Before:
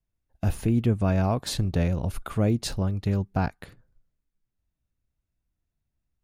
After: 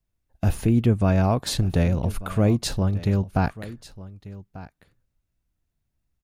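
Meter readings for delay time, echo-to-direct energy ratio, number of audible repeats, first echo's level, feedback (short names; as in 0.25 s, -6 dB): 1.192 s, -17.5 dB, 1, -17.5 dB, no steady repeat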